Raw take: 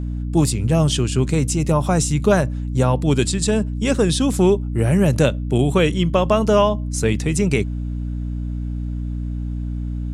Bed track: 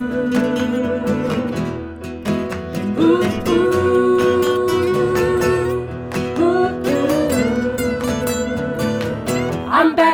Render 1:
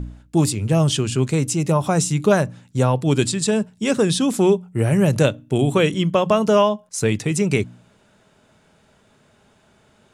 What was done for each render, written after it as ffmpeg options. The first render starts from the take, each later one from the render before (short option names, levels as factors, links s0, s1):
-af "bandreject=f=60:t=h:w=4,bandreject=f=120:t=h:w=4,bandreject=f=180:t=h:w=4,bandreject=f=240:t=h:w=4,bandreject=f=300:t=h:w=4"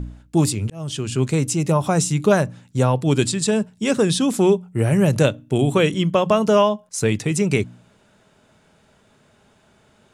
-filter_complex "[0:a]asplit=2[s0][s1];[s0]atrim=end=0.7,asetpts=PTS-STARTPTS,afade=t=out:st=0.696:d=0.004:c=hsin[s2];[s1]atrim=start=0.7,asetpts=PTS-STARTPTS,afade=t=in:d=0.54[s3];[s2][s3]concat=n=2:v=0:a=1"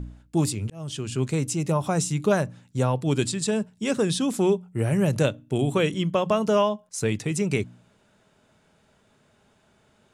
-af "volume=0.531"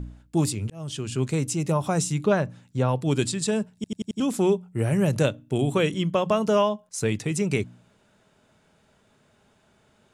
-filter_complex "[0:a]asettb=1/sr,asplit=3[s0][s1][s2];[s0]atrim=end=2.234[s3];[s1]atrim=start=2.23:end=2.89,asetpts=PTS-STARTPTS,afade=t=in:d=0.004:c=qsin,afade=t=out:st=0.656:d=0.004:c=qsin,acrossover=split=4800[s4][s5];[s5]acompressor=threshold=0.00112:ratio=4:attack=1:release=60[s6];[s4][s6]amix=inputs=2:normalize=0[s7];[s2]atrim=start=2.886[s8];[s3][s7]acrossfade=d=0.004:c1=hsin:c2=qsin[s9];[s9][s8]acrossfade=d=0.004:c1=qsin:c2=hsin,asplit=6[s10][s11][s12][s13][s14][s15];[s10]atrim=end=3.842[s16];[s11]atrim=start=3.748:end=3.842[s17];[s12]atrim=start=3.748:end=3.842[s18];[s13]atrim=start=3.748:end=3.842[s19];[s14]atrim=start=3.748:end=3.842[s20];[s15]atrim=start=4.198[s21];[s16][s17]acrossfade=d=0.004:c1=hsin:c2=hsin[s22];[s22][s18]acrossfade=d=0.004:c1=hsin:c2=hsin[s23];[s23][s19]acrossfade=d=0.004:c1=hsin:c2=hsin[s24];[s24][s20]acrossfade=d=0.004:c1=hsin:c2=hsin[s25];[s25][s21]acrossfade=d=0.004:c1=hsin:c2=hsin"